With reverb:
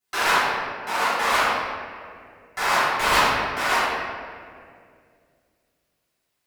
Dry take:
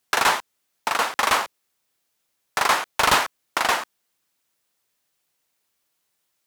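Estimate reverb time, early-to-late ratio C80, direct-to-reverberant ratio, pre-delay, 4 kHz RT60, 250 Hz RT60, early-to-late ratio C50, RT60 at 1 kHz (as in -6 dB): 2.3 s, -0.5 dB, -16.0 dB, 4 ms, 1.3 s, 2.8 s, -3.5 dB, 1.9 s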